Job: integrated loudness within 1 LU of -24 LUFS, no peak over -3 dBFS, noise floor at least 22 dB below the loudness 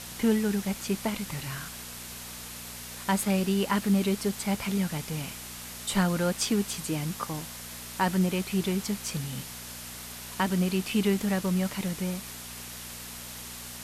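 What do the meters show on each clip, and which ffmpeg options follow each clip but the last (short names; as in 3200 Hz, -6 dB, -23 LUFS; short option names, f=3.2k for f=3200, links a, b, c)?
hum 60 Hz; harmonics up to 240 Hz; hum level -48 dBFS; noise floor -42 dBFS; noise floor target -52 dBFS; loudness -30.0 LUFS; peak -12.5 dBFS; loudness target -24.0 LUFS
-> -af "bandreject=f=60:t=h:w=4,bandreject=f=120:t=h:w=4,bandreject=f=180:t=h:w=4,bandreject=f=240:t=h:w=4"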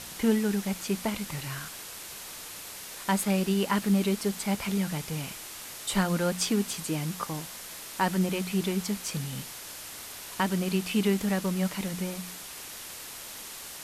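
hum none; noise floor -42 dBFS; noise floor target -53 dBFS
-> -af "afftdn=nr=11:nf=-42"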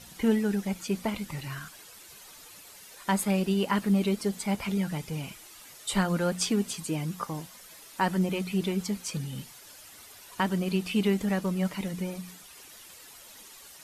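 noise floor -50 dBFS; noise floor target -52 dBFS
-> -af "afftdn=nr=6:nf=-50"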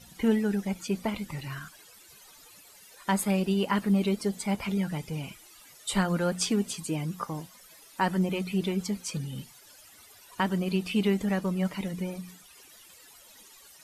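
noise floor -54 dBFS; loudness -29.5 LUFS; peak -13.0 dBFS; loudness target -24.0 LUFS
-> -af "volume=5.5dB"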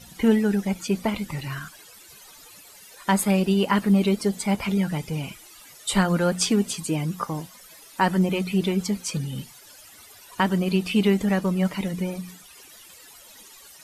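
loudness -24.0 LUFS; peak -7.5 dBFS; noise floor -48 dBFS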